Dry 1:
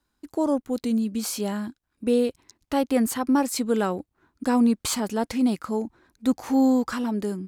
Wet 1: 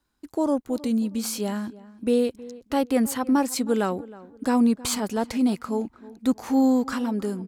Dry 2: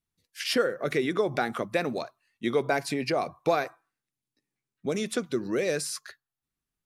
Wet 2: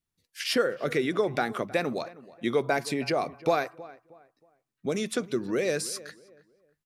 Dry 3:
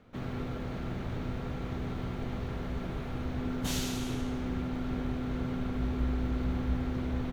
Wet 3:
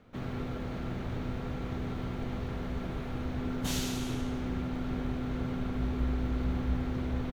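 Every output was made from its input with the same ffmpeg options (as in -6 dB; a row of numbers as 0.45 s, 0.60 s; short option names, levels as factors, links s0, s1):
-filter_complex "[0:a]asplit=2[s0][s1];[s1]adelay=316,lowpass=f=1800:p=1,volume=0.119,asplit=2[s2][s3];[s3]adelay=316,lowpass=f=1800:p=1,volume=0.33,asplit=2[s4][s5];[s5]adelay=316,lowpass=f=1800:p=1,volume=0.33[s6];[s0][s2][s4][s6]amix=inputs=4:normalize=0"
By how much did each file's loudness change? 0.0 LU, 0.0 LU, 0.0 LU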